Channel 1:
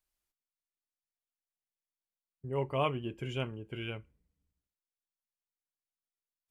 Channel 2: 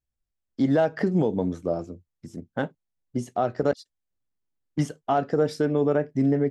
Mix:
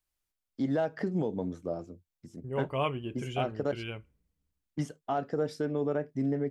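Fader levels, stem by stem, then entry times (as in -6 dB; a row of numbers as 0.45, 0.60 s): +0.5, -8.0 dB; 0.00, 0.00 s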